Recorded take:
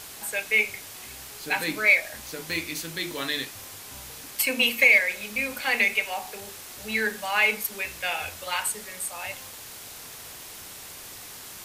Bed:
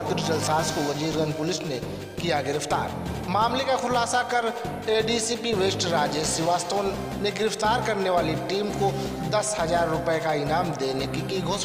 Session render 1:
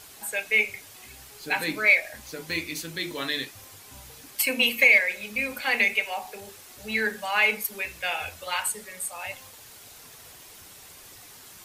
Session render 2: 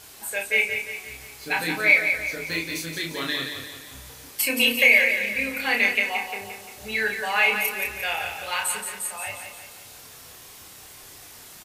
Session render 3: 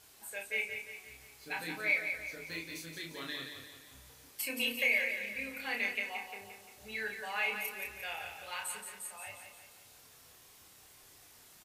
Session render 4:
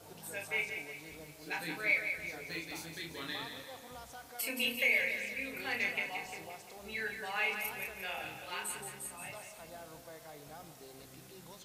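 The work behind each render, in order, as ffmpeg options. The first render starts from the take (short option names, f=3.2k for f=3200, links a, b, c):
-af "afftdn=nr=7:nf=-42"
-filter_complex "[0:a]asplit=2[a][b];[b]adelay=30,volume=-4dB[c];[a][c]amix=inputs=2:normalize=0,aecho=1:1:175|350|525|700|875|1050:0.447|0.214|0.103|0.0494|0.0237|0.0114"
-af "volume=-13.5dB"
-filter_complex "[1:a]volume=-27dB[a];[0:a][a]amix=inputs=2:normalize=0"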